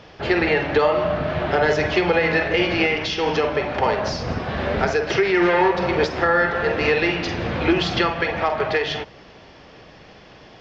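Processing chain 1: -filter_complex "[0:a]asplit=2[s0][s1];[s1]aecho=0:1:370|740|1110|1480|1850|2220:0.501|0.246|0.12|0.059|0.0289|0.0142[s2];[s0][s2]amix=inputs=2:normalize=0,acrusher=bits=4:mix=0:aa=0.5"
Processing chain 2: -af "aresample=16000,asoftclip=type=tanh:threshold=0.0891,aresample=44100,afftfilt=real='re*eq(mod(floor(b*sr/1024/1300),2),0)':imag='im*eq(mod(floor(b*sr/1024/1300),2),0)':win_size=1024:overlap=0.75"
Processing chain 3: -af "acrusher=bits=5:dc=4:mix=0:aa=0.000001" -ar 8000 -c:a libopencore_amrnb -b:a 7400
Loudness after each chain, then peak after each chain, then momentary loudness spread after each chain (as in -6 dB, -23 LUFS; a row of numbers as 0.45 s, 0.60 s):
-19.0 LUFS, -26.5 LUFS, -22.0 LUFS; -4.5 dBFS, -16.5 dBFS, -6.5 dBFS; 6 LU, 4 LU, 7 LU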